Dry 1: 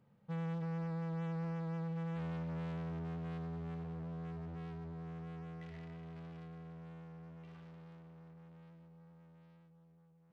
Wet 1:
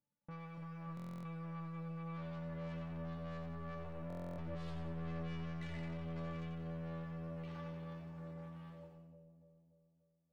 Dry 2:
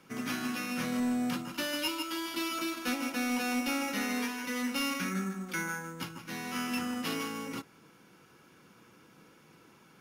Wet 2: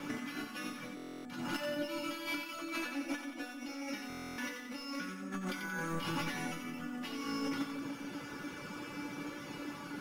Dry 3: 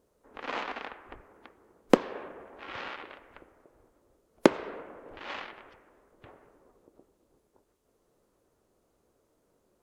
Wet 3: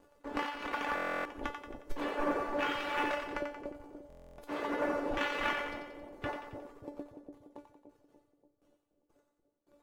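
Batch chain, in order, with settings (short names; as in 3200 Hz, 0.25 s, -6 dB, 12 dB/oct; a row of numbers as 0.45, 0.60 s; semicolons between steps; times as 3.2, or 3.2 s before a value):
negative-ratio compressor -45 dBFS, ratio -1; reverb removal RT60 1.2 s; high shelf 5700 Hz -10 dB; gate with hold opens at -55 dBFS; sample leveller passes 2; resonator 290 Hz, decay 0.24 s, harmonics all, mix 90%; split-band echo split 700 Hz, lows 0.291 s, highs 90 ms, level -6 dB; stuck buffer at 0.95/4.08, samples 1024, times 12; gain +12.5 dB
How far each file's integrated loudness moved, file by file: -3.0, -6.5, -4.0 LU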